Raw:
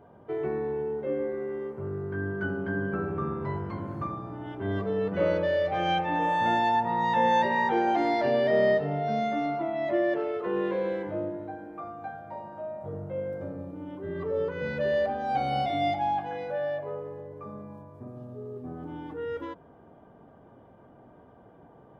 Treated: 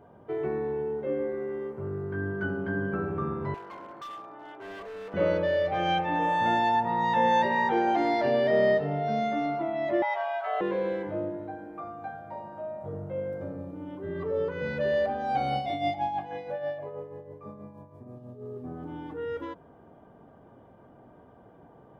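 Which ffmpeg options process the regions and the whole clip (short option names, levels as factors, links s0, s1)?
-filter_complex "[0:a]asettb=1/sr,asplit=3[s0][s1][s2];[s0]atrim=end=3.544[s3];[s1]atrim=start=3.54:end=5.14,asetpts=PTS-STARTPTS,afade=t=in:d=0.004:c=qsin,afade=t=out:st=1.596:d=0.004:c=qsin,highpass=570,lowpass=3200,asoftclip=type=hard:threshold=0.0126[s4];[s2]atrim=start=5.136[s5];[s3][s4]acrossfade=d=0.004:c1=hsin:c2=qsin[s6];[s6][s5]acrossfade=d=0.004:c1=qsin:c2=hsin,asettb=1/sr,asplit=3[s7][s8][s9];[s7]atrim=end=10.024[s10];[s8]atrim=start=10.02:end=10.61,asetpts=PTS-STARTPTS,afade=t=in:d=0.004:c=qsin,afade=t=out:st=0.586:d=0.004:c=qsin,lowshelf=f=240:g=-9.5,asplit=2[s11][s12];[s12]adelay=16,volume=0.473[s13];[s11][s13]amix=inputs=2:normalize=0,atrim=end_sample=26019,afreqshift=250[s14];[s9]atrim=start=10.606[s15];[s10][s14]acrossfade=d=0.004:c1=hsin:c2=qsin[s16];[s16][s15]acrossfade=d=0.004:c1=qsin:c2=hsin,asettb=1/sr,asplit=3[s17][s18][s19];[s17]atrim=end=15.554[s20];[s18]atrim=start=15.55:end=18.43,asetpts=PTS-STARTPTS,afade=t=in:d=0.004:c=qsin,afade=t=out:st=2.876:d=0.004:c=qsin,equalizer=f=1400:t=o:w=0.2:g=-10,tremolo=f=6.2:d=0.56[s21];[s19]atrim=start=18.426[s22];[s20][s21]acrossfade=d=0.004:c1=hsin:c2=qsin[s23];[s23][s22]acrossfade=d=0.004:c1=qsin:c2=hsin"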